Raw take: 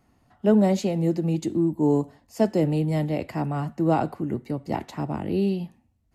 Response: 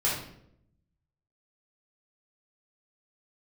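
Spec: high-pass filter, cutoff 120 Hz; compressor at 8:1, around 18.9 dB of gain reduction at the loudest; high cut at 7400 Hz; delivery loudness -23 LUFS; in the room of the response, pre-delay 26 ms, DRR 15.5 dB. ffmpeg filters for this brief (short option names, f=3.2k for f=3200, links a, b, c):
-filter_complex "[0:a]highpass=120,lowpass=7.4k,acompressor=threshold=-35dB:ratio=8,asplit=2[a][b];[1:a]atrim=start_sample=2205,adelay=26[c];[b][c]afir=irnorm=-1:irlink=0,volume=-25.5dB[d];[a][d]amix=inputs=2:normalize=0,volume=16dB"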